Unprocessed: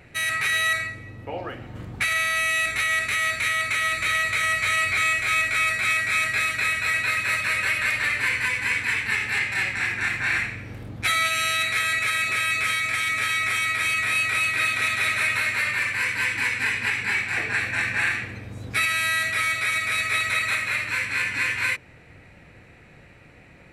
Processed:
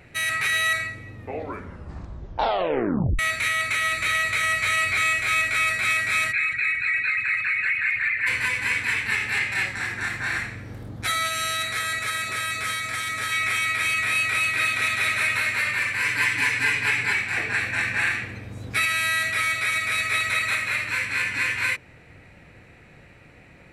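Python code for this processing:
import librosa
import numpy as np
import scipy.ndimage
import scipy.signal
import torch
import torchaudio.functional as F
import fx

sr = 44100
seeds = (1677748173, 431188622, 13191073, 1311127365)

y = fx.envelope_sharpen(x, sr, power=2.0, at=(6.31, 8.26), fade=0.02)
y = fx.peak_eq(y, sr, hz=2500.0, db=-8.0, octaves=0.59, at=(9.66, 13.32))
y = fx.comb(y, sr, ms=6.9, depth=0.87, at=(16.04, 17.13))
y = fx.edit(y, sr, fx.tape_stop(start_s=1.14, length_s=2.05), tone=tone)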